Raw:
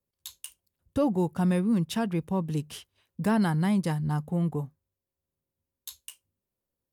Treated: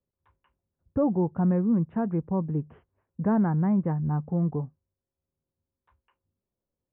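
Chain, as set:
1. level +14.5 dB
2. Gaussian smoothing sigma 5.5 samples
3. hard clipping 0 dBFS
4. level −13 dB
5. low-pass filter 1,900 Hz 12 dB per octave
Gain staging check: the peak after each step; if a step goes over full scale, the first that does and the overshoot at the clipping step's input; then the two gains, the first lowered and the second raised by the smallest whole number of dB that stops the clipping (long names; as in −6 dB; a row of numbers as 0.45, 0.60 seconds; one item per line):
−0.5, −2.0, −2.0, −15.0, −15.0 dBFS
no step passes full scale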